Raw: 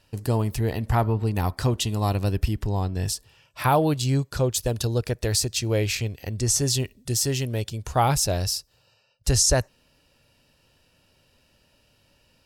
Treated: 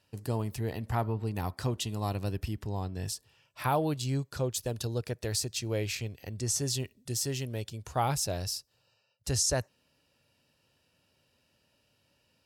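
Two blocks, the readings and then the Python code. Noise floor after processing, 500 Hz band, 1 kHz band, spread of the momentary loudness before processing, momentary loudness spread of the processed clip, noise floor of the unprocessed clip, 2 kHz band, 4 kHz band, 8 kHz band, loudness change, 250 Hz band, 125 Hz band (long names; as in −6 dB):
−73 dBFS, −8.0 dB, −8.0 dB, 7 LU, 7 LU, −64 dBFS, −8.0 dB, −8.0 dB, −8.0 dB, −8.5 dB, −8.0 dB, −9.0 dB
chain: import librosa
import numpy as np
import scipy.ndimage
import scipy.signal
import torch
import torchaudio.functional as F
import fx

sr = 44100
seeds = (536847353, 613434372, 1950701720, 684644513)

y = scipy.signal.sosfilt(scipy.signal.butter(2, 80.0, 'highpass', fs=sr, output='sos'), x)
y = y * librosa.db_to_amplitude(-8.0)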